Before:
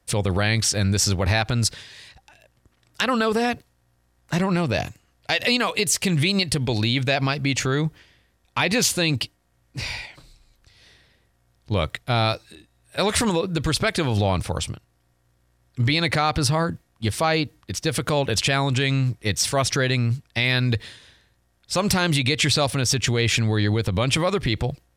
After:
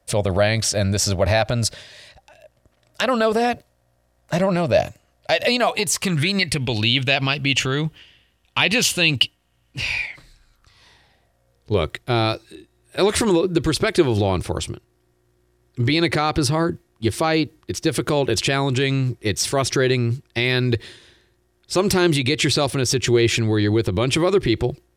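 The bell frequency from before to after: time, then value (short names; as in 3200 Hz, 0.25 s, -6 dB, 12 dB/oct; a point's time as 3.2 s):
bell +14 dB 0.35 oct
5.57 s 610 Hz
6.7 s 2900 Hz
9.8 s 2900 Hz
11.87 s 360 Hz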